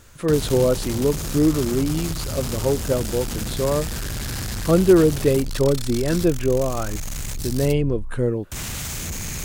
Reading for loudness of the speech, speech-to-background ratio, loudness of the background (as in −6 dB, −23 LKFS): −21.5 LKFS, 8.0 dB, −29.5 LKFS